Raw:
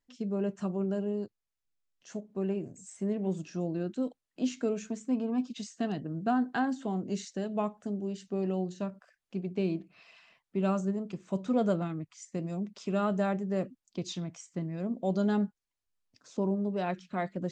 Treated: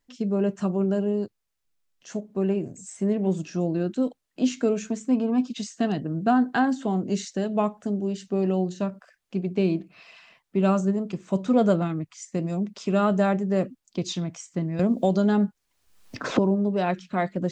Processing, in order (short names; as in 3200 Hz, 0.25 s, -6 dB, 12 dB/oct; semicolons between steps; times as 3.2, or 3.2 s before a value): 14.79–16.39 three-band squash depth 100%; gain +7.5 dB